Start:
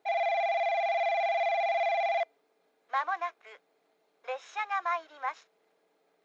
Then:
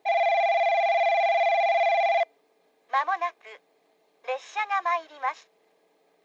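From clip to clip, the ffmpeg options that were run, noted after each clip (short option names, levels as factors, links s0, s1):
-af "bandreject=f=1400:w=5.1,volume=2"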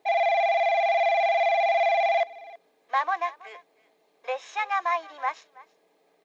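-af "aecho=1:1:325:0.0891"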